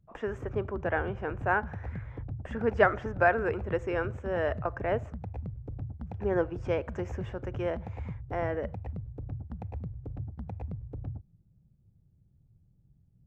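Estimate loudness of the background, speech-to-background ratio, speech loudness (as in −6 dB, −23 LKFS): −40.5 LKFS, 9.0 dB, −31.5 LKFS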